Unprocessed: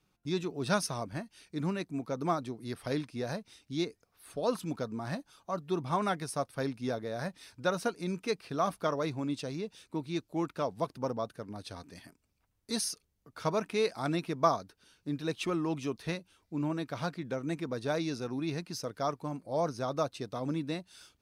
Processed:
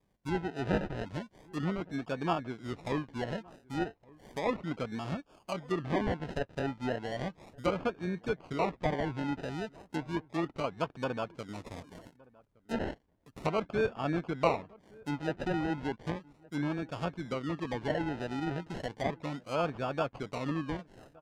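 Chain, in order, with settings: decimation with a swept rate 31×, swing 60% 0.34 Hz; low-pass that closes with the level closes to 2.4 kHz, closed at -29.5 dBFS; echo from a far wall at 200 m, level -24 dB

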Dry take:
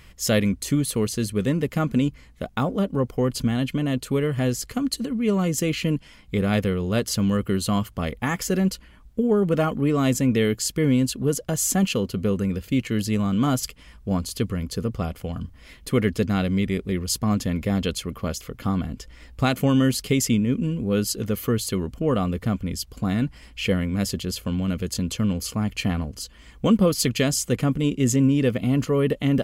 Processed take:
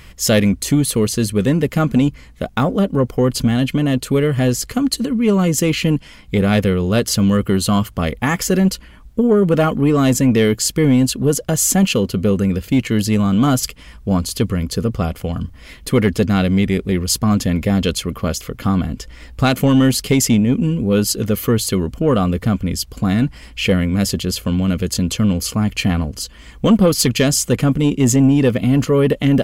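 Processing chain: saturation -12 dBFS, distortion -20 dB; trim +8 dB

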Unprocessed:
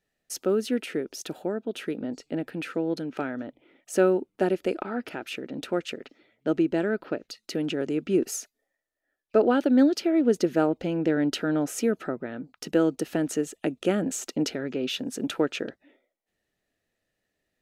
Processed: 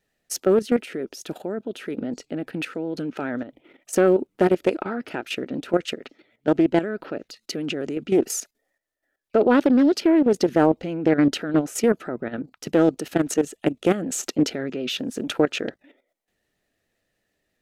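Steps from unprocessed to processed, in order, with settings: level held to a coarse grid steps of 12 dB; vibrato 9.2 Hz 49 cents; loudspeaker Doppler distortion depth 0.21 ms; trim +8.5 dB

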